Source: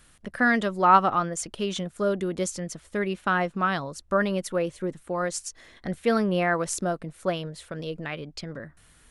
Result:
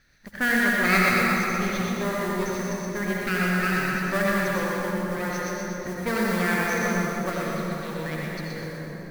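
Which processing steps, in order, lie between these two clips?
lower of the sound and its delayed copy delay 0.49 ms
Chebyshev low-pass with heavy ripple 6,400 Hz, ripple 6 dB
noise that follows the level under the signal 16 dB
echo with a time of its own for lows and highs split 640 Hz, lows 679 ms, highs 123 ms, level −5 dB
convolution reverb RT60 3.2 s, pre-delay 63 ms, DRR −3 dB

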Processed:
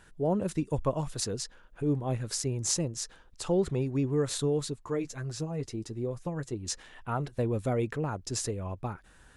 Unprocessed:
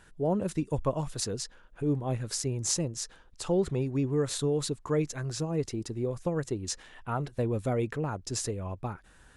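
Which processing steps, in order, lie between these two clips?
0:04.60–0:06.66: flanger 1.2 Hz, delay 6.7 ms, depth 3.1 ms, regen −26%

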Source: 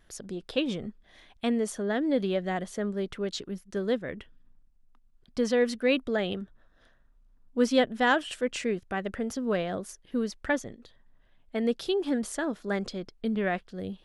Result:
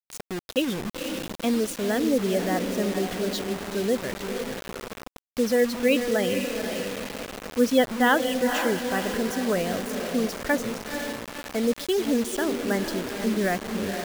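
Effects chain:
feedback delay with all-pass diffusion 490 ms, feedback 52%, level −6 dB
gate on every frequency bin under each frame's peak −25 dB strong
bit-depth reduction 6 bits, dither none
level +3 dB

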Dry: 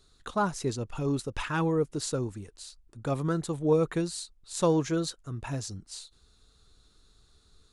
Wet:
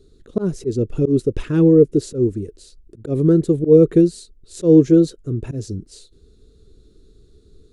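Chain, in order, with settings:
low shelf with overshoot 600 Hz +13.5 dB, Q 3
volume swells 116 ms
level −1.5 dB

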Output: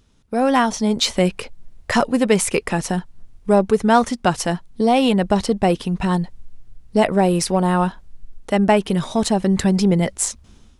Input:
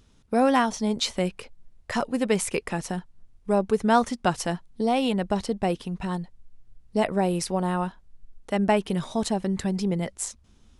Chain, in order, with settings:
automatic gain control gain up to 14 dB
in parallel at −10.5 dB: soft clipping −18.5 dBFS, distortion −7 dB
on the sum: level −2 dB

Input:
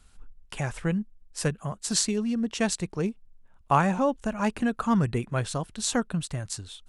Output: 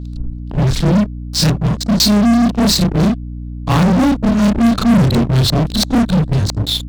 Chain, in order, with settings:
every overlapping window played backwards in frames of 77 ms
flat-topped bell 1,100 Hz −15 dB 3 octaves
auto-filter low-pass square 3 Hz 670–4,100 Hz
in parallel at −7 dB: fuzz pedal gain 42 dB, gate −51 dBFS
on the sum: mains hum 60 Hz, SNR 12 dB
level +7.5 dB

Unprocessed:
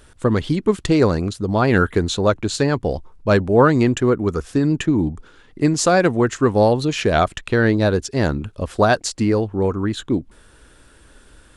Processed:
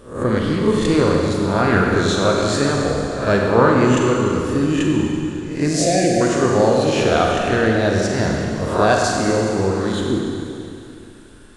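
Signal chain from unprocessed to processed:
peak hold with a rise ahead of every peak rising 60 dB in 0.49 s
0:05.68–0:06.21: elliptic band-stop filter 720–1,800 Hz
four-comb reverb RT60 2.7 s, combs from 32 ms, DRR −1 dB
level −3.5 dB

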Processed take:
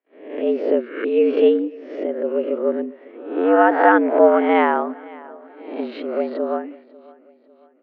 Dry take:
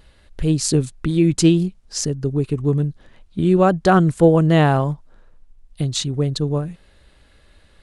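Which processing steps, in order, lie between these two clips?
peak hold with a rise ahead of every peak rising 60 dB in 0.65 s
noise gate −42 dBFS, range −31 dB
single-sideband voice off tune +94 Hz 180–2,400 Hz
on a send: repeating echo 547 ms, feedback 45%, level −22 dB
on the sum: pitch shifter +1 semitone

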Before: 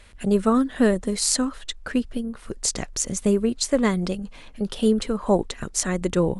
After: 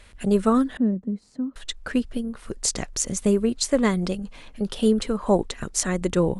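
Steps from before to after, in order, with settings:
0:00.77–0:01.56: resonant band-pass 210 Hz, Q 2.5

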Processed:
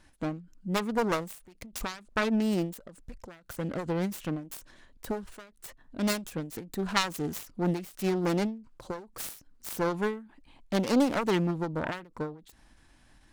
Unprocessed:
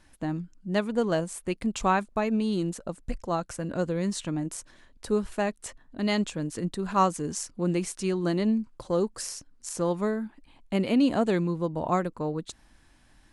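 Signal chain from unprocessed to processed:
phase distortion by the signal itself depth 0.79 ms
every ending faded ahead of time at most 130 dB per second

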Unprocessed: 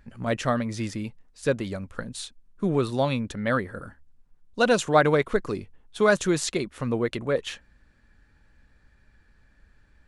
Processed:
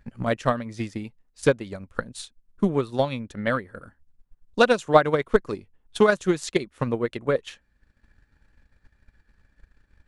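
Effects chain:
transient designer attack +10 dB, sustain −6 dB
highs frequency-modulated by the lows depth 0.11 ms
level −3.5 dB

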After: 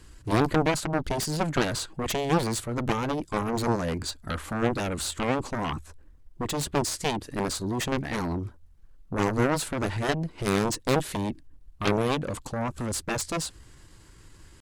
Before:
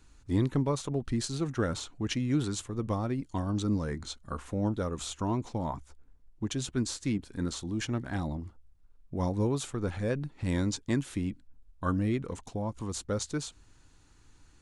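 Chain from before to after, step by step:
harmonic generator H 4 −13 dB, 7 −6 dB, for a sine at −16 dBFS
pitch shifter +2 semitones
level +1 dB

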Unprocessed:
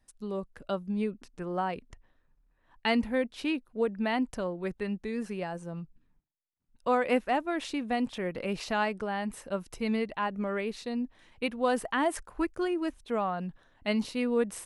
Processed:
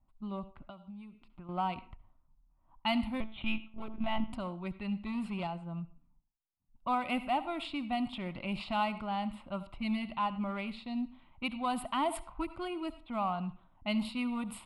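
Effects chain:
on a send at −15.5 dB: convolution reverb RT60 0.40 s, pre-delay 64 ms
0:03.20–0:04.33: on the sum: one-pitch LPC vocoder at 8 kHz 220 Hz
0:05.06–0:05.47: leveller curve on the samples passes 1
in parallel at −7 dB: hard clipping −30 dBFS, distortion −7 dB
on the sum: low-pass that shuts in the quiet parts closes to 1,000 Hz, open at −23.5 dBFS
0:00.63–0:01.49: downward compressor 12 to 1, threshold −40 dBFS, peak gain reduction 16 dB
phaser with its sweep stopped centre 1,700 Hz, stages 6
level −2 dB

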